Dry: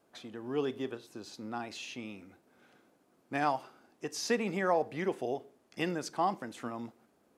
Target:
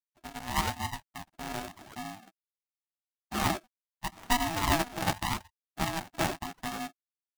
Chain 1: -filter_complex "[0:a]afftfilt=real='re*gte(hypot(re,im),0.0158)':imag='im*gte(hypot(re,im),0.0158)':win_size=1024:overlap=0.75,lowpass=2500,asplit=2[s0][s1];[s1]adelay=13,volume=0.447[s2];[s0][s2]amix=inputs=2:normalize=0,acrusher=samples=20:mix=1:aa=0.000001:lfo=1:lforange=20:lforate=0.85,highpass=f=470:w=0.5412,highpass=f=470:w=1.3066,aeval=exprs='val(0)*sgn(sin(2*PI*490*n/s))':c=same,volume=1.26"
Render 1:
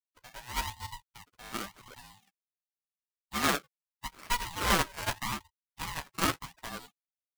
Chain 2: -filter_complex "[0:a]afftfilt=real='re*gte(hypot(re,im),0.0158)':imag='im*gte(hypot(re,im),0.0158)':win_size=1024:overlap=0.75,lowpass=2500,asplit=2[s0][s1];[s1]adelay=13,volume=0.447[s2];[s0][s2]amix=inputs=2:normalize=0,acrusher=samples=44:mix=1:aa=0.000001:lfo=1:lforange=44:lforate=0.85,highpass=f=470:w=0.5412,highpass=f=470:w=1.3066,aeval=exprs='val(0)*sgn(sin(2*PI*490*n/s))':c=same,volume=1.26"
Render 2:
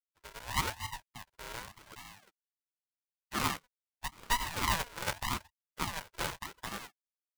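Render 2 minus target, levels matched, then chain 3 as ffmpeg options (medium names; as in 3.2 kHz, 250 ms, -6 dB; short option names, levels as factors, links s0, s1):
125 Hz band -2.5 dB
-filter_complex "[0:a]afftfilt=real='re*gte(hypot(re,im),0.0158)':imag='im*gte(hypot(re,im),0.0158)':win_size=1024:overlap=0.75,lowpass=2500,asplit=2[s0][s1];[s1]adelay=13,volume=0.447[s2];[s0][s2]amix=inputs=2:normalize=0,acrusher=samples=44:mix=1:aa=0.000001:lfo=1:lforange=44:lforate=0.85,highpass=f=120:w=0.5412,highpass=f=120:w=1.3066,aeval=exprs='val(0)*sgn(sin(2*PI*490*n/s))':c=same,volume=1.26"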